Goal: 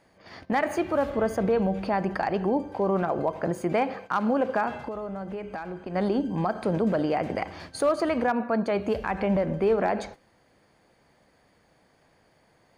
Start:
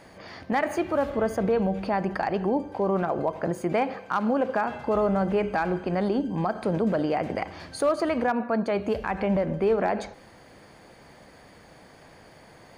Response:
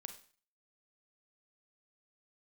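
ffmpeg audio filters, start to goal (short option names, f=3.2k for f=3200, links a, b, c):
-filter_complex "[0:a]asplit=3[a][b][c];[a]afade=t=out:st=4.83:d=0.02[d];[b]acompressor=threshold=-33dB:ratio=5,afade=t=in:st=4.83:d=0.02,afade=t=out:st=5.94:d=0.02[e];[c]afade=t=in:st=5.94:d=0.02[f];[d][e][f]amix=inputs=3:normalize=0,agate=range=-12dB:threshold=-42dB:ratio=16:detection=peak"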